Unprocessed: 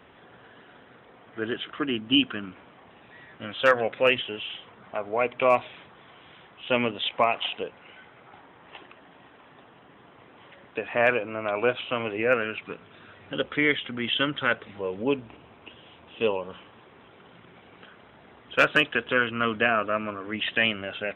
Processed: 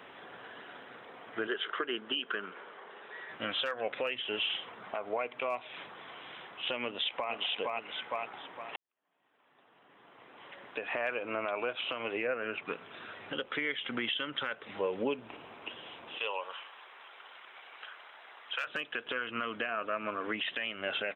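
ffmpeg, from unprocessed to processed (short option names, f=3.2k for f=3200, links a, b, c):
-filter_complex "[0:a]asettb=1/sr,asplit=3[a][b][c];[a]atrim=end=1.474[d];[b]atrim=start=1.47:end=3.29,asetpts=PTS-STARTPTS,afade=t=in:d=0.004:c=qsin,afade=t=out:st=1.816:d=0.004:c=qsin,highpass=270,equalizer=f=280:t=q:w=4:g=-9,equalizer=f=420:t=q:w=4:g=7,equalizer=f=700:t=q:w=4:g=-4,equalizer=f=1.5k:t=q:w=4:g=4,equalizer=f=2.5k:t=q:w=4:g=-6,lowpass=f=3.8k:w=0.5412,lowpass=f=3.8k:w=1.3066[e];[c]atrim=start=3.286[f];[d][e]acrossfade=d=0.004:c1=hsin:c2=qsin[g];[g][f]acrossfade=d=0.004:c1=qsin:c2=hsin,asplit=2[h][i];[i]afade=t=in:st=6.83:d=0.01,afade=t=out:st=7.33:d=0.01,aecho=0:1:460|920|1380|1840:0.530884|0.159265|0.0477796|0.0143339[j];[h][j]amix=inputs=2:normalize=0,asettb=1/sr,asplit=3[k][l][m];[k]atrim=end=12.274[n];[l]atrim=start=12.27:end=12.68,asetpts=PTS-STARTPTS,afade=t=in:d=0.004:c=qsin,afade=t=out:st=0.406:d=0.004:c=qsin,lowpass=f=1.2k:p=1[o];[m]atrim=start=12.676[p];[n][o]acrossfade=d=0.004:c1=hsin:c2=qsin[q];[q][p]acrossfade=d=0.004:c1=qsin:c2=hsin,asettb=1/sr,asplit=3[r][s][t];[r]atrim=end=16.184[u];[s]atrim=start=16.18:end=18.67,asetpts=PTS-STARTPTS,afade=t=in:d=0.004:c=qsin,afade=t=out:st=2.486:d=0.004:c=qsin,highpass=870[v];[t]atrim=start=18.666[w];[u][v]acrossfade=d=0.004:c1=hsin:c2=qsin[x];[x][w]acrossfade=d=0.004:c1=qsin:c2=hsin,asplit=2[y][z];[y]atrim=end=8.76,asetpts=PTS-STARTPTS,afade=t=out:st=8.756:d=0.004:c=hsin[aa];[z]atrim=start=8.76,asetpts=PTS-STARTPTS,afade=t=in:d=2.1:c=qua[ab];[aa][ab]concat=n=2:v=0:a=1,highpass=f=470:p=1,acompressor=threshold=-30dB:ratio=6,alimiter=level_in=3dB:limit=-24dB:level=0:latency=1:release=258,volume=-3dB,volume=4.5dB"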